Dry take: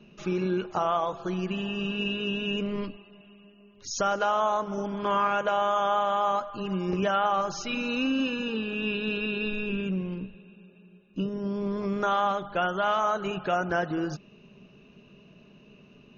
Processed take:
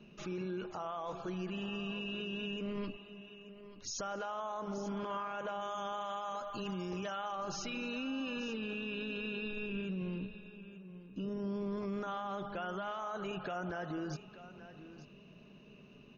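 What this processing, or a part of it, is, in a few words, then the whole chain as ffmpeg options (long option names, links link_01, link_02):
stacked limiters: -filter_complex "[0:a]asettb=1/sr,asplit=3[link_01][link_02][link_03];[link_01]atrim=end=5.614[link_04];[link_02]atrim=start=5.61:end=7.35,asetpts=PTS-STARTPTS,afade=type=in:duration=0.004:curve=qsin,afade=type=out:start_time=1.736:duration=0.004:curve=qsin,aemphasis=mode=production:type=75kf[link_05];[link_03]atrim=start=7.346[link_06];[link_04][link_05]acrossfade=duration=0.004:curve1=hsin:curve2=qsin[link_07];[link_07][link_06]acrossfade=duration=0.004:curve1=qsin:curve2=hsin,alimiter=limit=-21.5dB:level=0:latency=1:release=176,alimiter=level_in=4.5dB:limit=-24dB:level=0:latency=1:release=31,volume=-4.5dB,aecho=1:1:883:0.188,volume=-3.5dB"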